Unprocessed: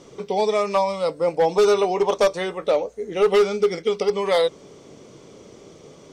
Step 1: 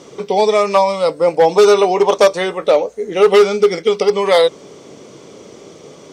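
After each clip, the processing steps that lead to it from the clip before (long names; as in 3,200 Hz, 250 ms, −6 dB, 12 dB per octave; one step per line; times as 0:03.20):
high-pass filter 170 Hz 6 dB per octave
level +8 dB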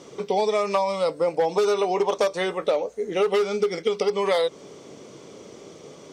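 downward compressor, threshold −13 dBFS, peak gain reduction 8 dB
level −5.5 dB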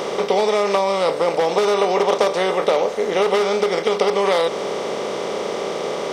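compressor on every frequency bin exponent 0.4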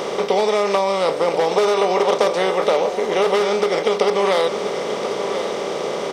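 single-tap delay 1,034 ms −10.5 dB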